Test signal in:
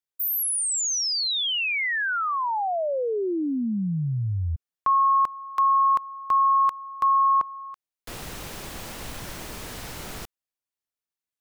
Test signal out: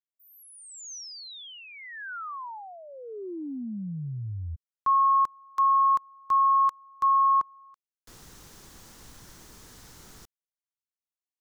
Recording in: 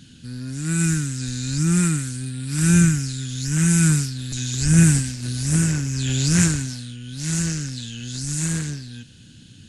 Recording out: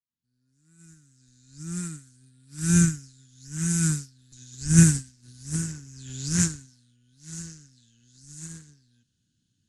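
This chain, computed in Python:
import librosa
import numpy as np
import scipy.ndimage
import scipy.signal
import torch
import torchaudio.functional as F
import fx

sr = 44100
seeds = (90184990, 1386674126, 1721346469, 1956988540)

y = fx.fade_in_head(x, sr, length_s=2.14)
y = fx.graphic_eq_15(y, sr, hz=(630, 2500, 6300), db=(-7, -6, 5))
y = fx.upward_expand(y, sr, threshold_db=-29.0, expansion=2.5)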